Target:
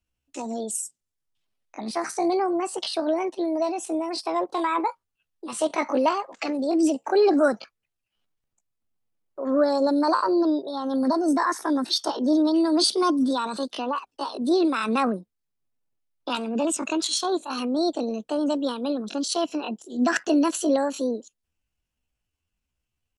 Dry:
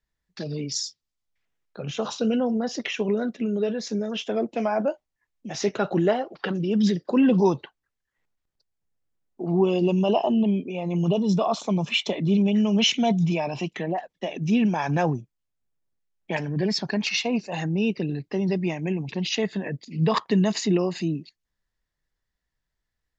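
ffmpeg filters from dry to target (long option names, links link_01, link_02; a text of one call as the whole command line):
ffmpeg -i in.wav -af "asetrate=68011,aresample=44100,atempo=0.64842" out.wav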